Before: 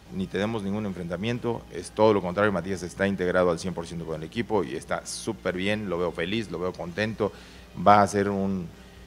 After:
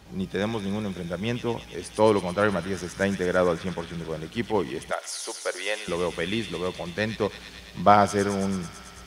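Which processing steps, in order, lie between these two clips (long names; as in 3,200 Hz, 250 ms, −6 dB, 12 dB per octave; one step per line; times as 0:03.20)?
0:03.52–0:03.93: high shelf with overshoot 4,100 Hz −14 dB, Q 1.5
0:04.91–0:05.88: high-pass filter 450 Hz 24 dB per octave
delay with a high-pass on its return 110 ms, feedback 83%, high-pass 3,100 Hz, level −4 dB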